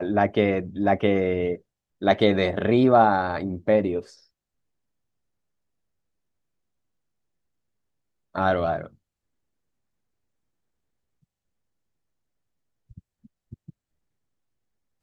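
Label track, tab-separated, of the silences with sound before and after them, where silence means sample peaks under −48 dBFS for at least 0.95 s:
4.190000	8.350000	silence
8.930000	12.910000	silence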